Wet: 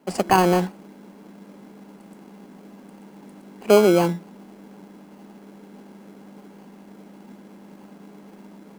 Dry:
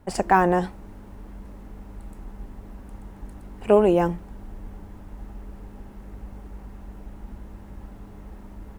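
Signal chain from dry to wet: elliptic high-pass 170 Hz; in parallel at -4 dB: sample-and-hold 24×; on the sum: gain -1 dB

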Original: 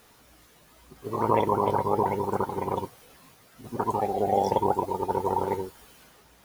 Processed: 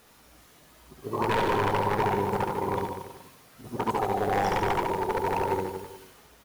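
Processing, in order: wavefolder -18.5 dBFS; reverse bouncing-ball echo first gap 70 ms, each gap 1.1×, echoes 5; gain -1 dB

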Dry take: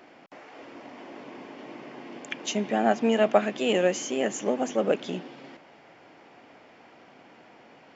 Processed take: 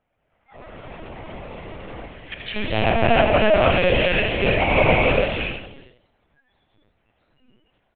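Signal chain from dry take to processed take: rattling part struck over -37 dBFS, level -18 dBFS; non-linear reverb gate 0.34 s rising, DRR -5 dB; dynamic EQ 280 Hz, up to -3 dB, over -41 dBFS, Q 4.4; notches 60/120/180/240/300/360/420/480 Hz; spectral noise reduction 24 dB; 2.06–2.57 band shelf 600 Hz -8 dB 2.6 oct; 4.59–5.1 small resonant body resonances 910/2200 Hz, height 14 dB, ringing for 25 ms; frequency-shifting echo 86 ms, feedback 30%, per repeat +110 Hz, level -7 dB; LPC vocoder at 8 kHz pitch kept; gain +1.5 dB

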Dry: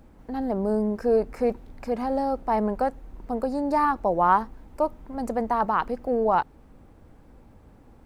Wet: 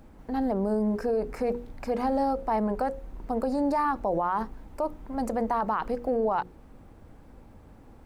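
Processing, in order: notches 60/120/180/240/300/360/420/480/540 Hz; limiter -20 dBFS, peak gain reduction 12 dB; gain +1.5 dB

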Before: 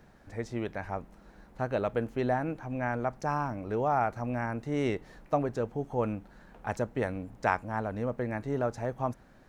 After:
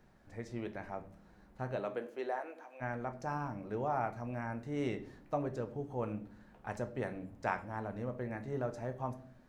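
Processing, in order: 1.75–2.8 HPF 220 Hz -> 610 Hz 24 dB/oct; reverb, pre-delay 5 ms, DRR 7.5 dB; gain -8 dB

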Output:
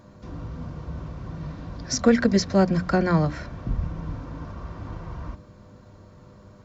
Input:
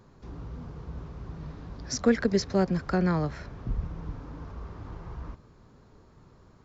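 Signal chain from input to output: buzz 100 Hz, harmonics 6, -58 dBFS -3 dB/oct; notches 60/120/180/240/300 Hz; notch comb 420 Hz; gain +7 dB

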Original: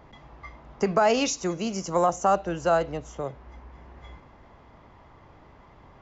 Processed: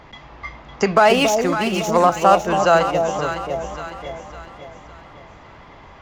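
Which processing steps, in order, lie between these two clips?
0.96–2.47 median filter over 9 samples; bell 3100 Hz +8.5 dB 2.9 oct; on a send: echo with dull and thin repeats by turns 0.278 s, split 810 Hz, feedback 66%, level -4 dB; on the sum: gain +5 dB

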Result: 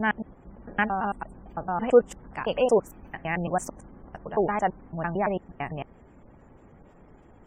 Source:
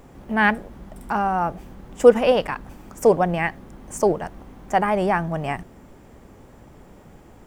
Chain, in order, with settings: slices in reverse order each 0.112 s, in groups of 4; spectral gate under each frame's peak -30 dB strong; gain -5.5 dB

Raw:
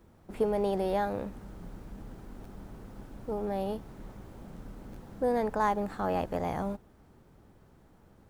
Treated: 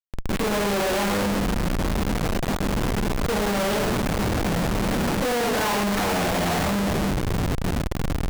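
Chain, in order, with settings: 3.58–5.8 low shelf 120 Hz -6.5 dB; AGC gain up to 11.5 dB; bell 2200 Hz +5.5 dB 0.66 oct; compressor, threshold -20 dBFS, peak gain reduction 9 dB; shoebox room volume 160 m³, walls mixed, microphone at 1.9 m; Schmitt trigger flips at -40 dBFS; gain -3 dB

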